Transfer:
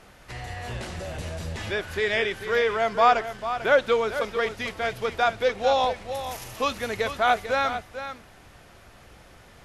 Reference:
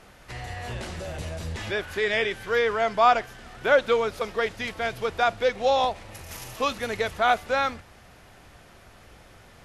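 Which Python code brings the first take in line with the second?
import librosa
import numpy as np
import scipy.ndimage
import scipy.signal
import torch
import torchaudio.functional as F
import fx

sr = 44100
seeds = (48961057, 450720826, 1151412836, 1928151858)

y = fx.fix_echo_inverse(x, sr, delay_ms=445, level_db=-10.5)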